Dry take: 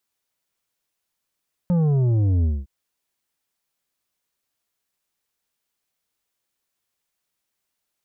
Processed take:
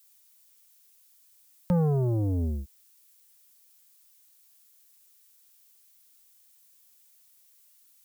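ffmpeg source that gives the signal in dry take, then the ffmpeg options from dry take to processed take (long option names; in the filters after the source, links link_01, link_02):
-f lavfi -i "aevalsrc='0.141*clip((0.96-t)/0.22,0,1)*tanh(2.51*sin(2*PI*180*0.96/log(65/180)*(exp(log(65/180)*t/0.96)-1)))/tanh(2.51)':duration=0.96:sample_rate=44100"
-filter_complex "[0:a]acrossover=split=210[link_01][link_02];[link_01]acompressor=threshold=-28dB:ratio=6[link_03];[link_03][link_02]amix=inputs=2:normalize=0,crystalizer=i=6:c=0"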